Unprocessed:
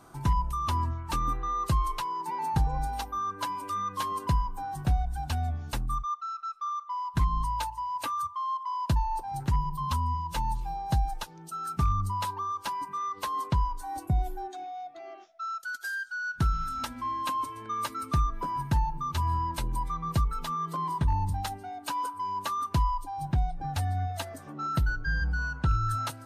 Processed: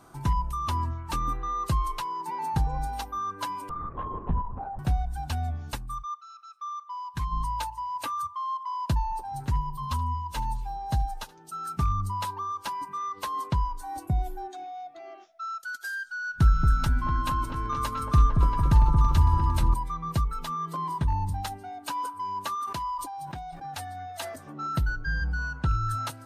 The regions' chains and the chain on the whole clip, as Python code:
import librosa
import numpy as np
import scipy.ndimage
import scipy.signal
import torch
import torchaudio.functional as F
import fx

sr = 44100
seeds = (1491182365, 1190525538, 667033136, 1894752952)

y = fx.chain(x, sr, fx.lowpass(hz=1000.0, slope=12),
    fx.lpc_vocoder(seeds[0], excitation='whisper', order=10),
    fx.band_squash(depth_pct=40), at=(3.69, 4.79))
y = fx.chain(y, sr, fx.peak_eq(hz=290.0, db=-8.5, octaves=2.9),
    fx.notch_comb(f0_hz=680.0), at=(5.75, 7.32))
y = fx.chain(y, sr, fx.notch_comb(f0_hz=170.0),
    fx.echo_single(ms=76, db=-20.0), at=(9.11, 11.52))
y = fx.chain(y, sr, fx.low_shelf(hz=140.0, db=9.0),
    fx.echo_opening(ms=227, hz=750, octaves=1, feedback_pct=70, wet_db=-3), at=(16.02, 19.74))
y = fx.chain(y, sr, fx.highpass(hz=590.0, slope=6),
    fx.sustainer(db_per_s=45.0), at=(22.55, 24.36))